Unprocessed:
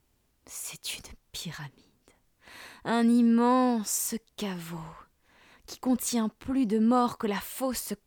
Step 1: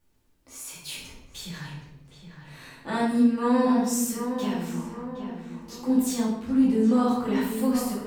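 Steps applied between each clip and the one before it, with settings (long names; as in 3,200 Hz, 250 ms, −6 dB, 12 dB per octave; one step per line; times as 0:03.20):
on a send: feedback echo with a low-pass in the loop 767 ms, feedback 48%, low-pass 2,100 Hz, level −8 dB
on the sum: rectangular room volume 240 cubic metres, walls mixed, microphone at 2.4 metres
level −7 dB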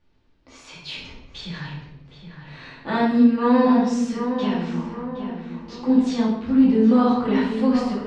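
low-pass filter 4,600 Hz 24 dB per octave
level +5 dB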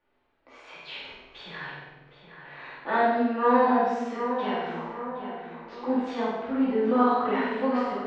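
three-way crossover with the lows and the highs turned down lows −20 dB, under 340 Hz, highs −21 dB, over 2,800 Hz
flutter between parallel walls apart 8.3 metres, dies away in 0.76 s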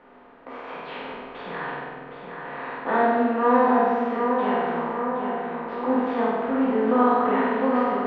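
compressor on every frequency bin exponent 0.6
low-pass filter 2,400 Hz 12 dB per octave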